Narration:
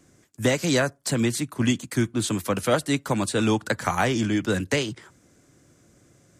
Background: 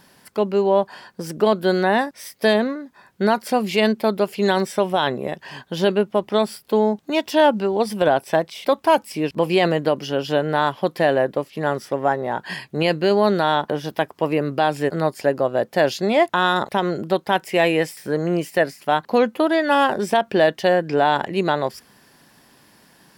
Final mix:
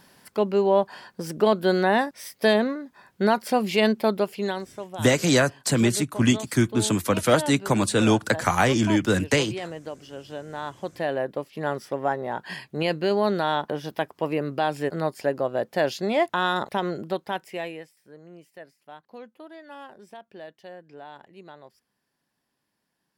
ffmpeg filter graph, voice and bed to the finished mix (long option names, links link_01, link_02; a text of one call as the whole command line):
ffmpeg -i stem1.wav -i stem2.wav -filter_complex "[0:a]adelay=4600,volume=2.5dB[link_01];[1:a]volume=8.5dB,afade=type=out:start_time=4.11:duration=0.56:silence=0.199526,afade=type=in:start_time=10.46:duration=1.21:silence=0.281838,afade=type=out:start_time=16.86:duration=1.03:silence=0.1[link_02];[link_01][link_02]amix=inputs=2:normalize=0" out.wav